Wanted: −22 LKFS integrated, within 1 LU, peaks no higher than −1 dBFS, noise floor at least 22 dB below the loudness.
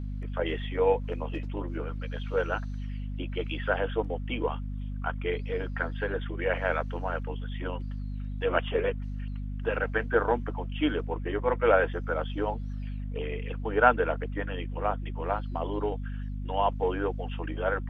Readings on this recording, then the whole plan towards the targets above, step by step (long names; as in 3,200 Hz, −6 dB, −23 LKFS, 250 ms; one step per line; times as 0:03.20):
mains hum 50 Hz; hum harmonics up to 250 Hz; level of the hum −32 dBFS; integrated loudness −30.5 LKFS; sample peak −6.0 dBFS; target loudness −22.0 LKFS
→ hum removal 50 Hz, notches 5
level +8.5 dB
brickwall limiter −1 dBFS